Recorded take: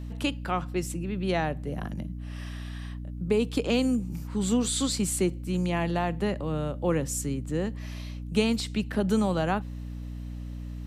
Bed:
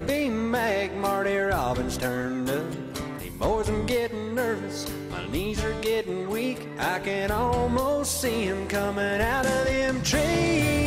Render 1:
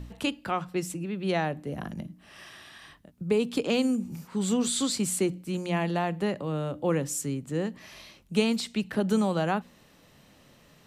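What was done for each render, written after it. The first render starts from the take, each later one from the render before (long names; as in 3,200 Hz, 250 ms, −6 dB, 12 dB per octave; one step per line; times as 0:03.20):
hum removal 60 Hz, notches 5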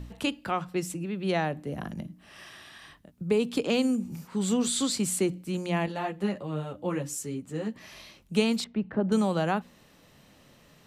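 0:05.86–0:07.76: string-ensemble chorus
0:08.64–0:09.12: low-pass filter 1,300 Hz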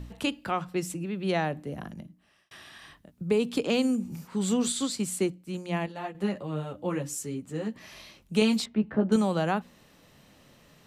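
0:01.54–0:02.51: fade out
0:04.72–0:06.15: expander for the loud parts, over −41 dBFS
0:08.40–0:09.16: double-tracking delay 14 ms −5 dB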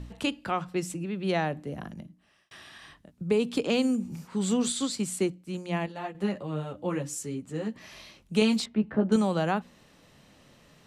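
low-pass filter 11,000 Hz 12 dB per octave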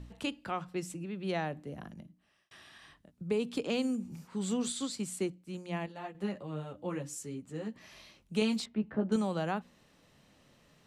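level −6.5 dB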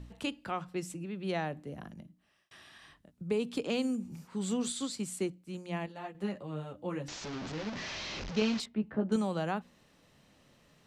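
0:07.08–0:08.60: linear delta modulator 32 kbit/s, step −33.5 dBFS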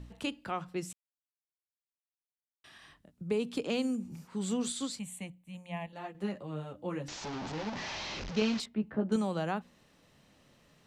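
0:00.93–0:02.64: silence
0:04.99–0:05.93: phaser with its sweep stopped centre 1,400 Hz, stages 6
0:07.18–0:08.14: parametric band 850 Hz +8.5 dB 0.43 octaves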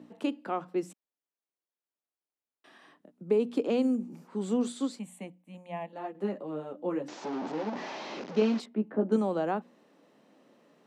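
high-pass filter 240 Hz 24 dB per octave
tilt shelving filter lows +8 dB, about 1,400 Hz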